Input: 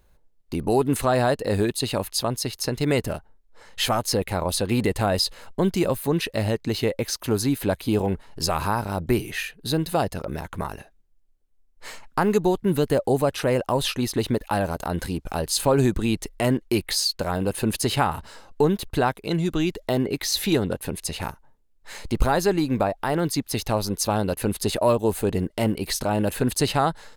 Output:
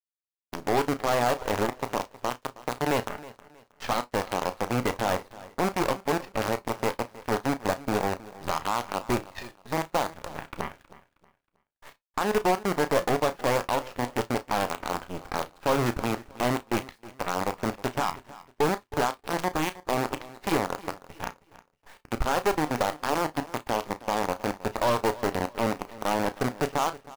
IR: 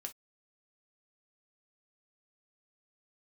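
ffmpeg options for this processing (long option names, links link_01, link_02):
-filter_complex "[0:a]lowpass=frequency=2400:width=0.5412,lowpass=frequency=2400:width=1.3066,acrusher=bits=4:dc=4:mix=0:aa=0.000001,equalizer=frequency=890:width=0.86:gain=7.5,alimiter=limit=-12.5dB:level=0:latency=1:release=346,agate=range=-33dB:threshold=-41dB:ratio=3:detection=peak,aeval=exprs='0.237*(cos(1*acos(clip(val(0)/0.237,-1,1)))-cos(1*PI/2))+0.0211*(cos(6*acos(clip(val(0)/0.237,-1,1)))-cos(6*PI/2))+0.0299*(cos(7*acos(clip(val(0)/0.237,-1,1)))-cos(7*PI/2))':channel_layout=same,asplit=2[link_01][link_02];[link_02]adelay=33,volume=-13dB[link_03];[link_01][link_03]amix=inputs=2:normalize=0,aecho=1:1:317|634|951:0.119|0.0357|0.0107,asplit=2[link_04][link_05];[1:a]atrim=start_sample=2205[link_06];[link_05][link_06]afir=irnorm=-1:irlink=0,volume=-0.5dB[link_07];[link_04][link_07]amix=inputs=2:normalize=0,volume=-6.5dB"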